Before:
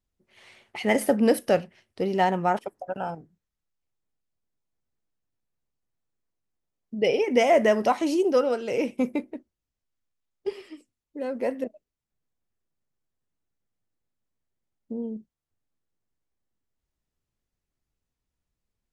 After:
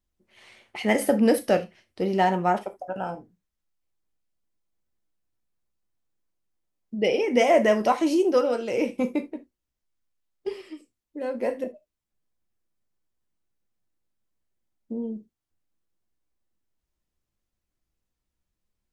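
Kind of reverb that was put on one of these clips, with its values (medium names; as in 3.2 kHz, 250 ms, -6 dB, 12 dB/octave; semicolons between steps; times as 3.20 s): gated-style reverb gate 100 ms falling, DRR 7.5 dB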